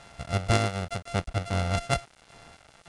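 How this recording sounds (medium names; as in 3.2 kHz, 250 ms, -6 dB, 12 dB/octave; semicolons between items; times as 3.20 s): a buzz of ramps at a fixed pitch in blocks of 64 samples; random-step tremolo; a quantiser's noise floor 8-bit, dither none; IMA ADPCM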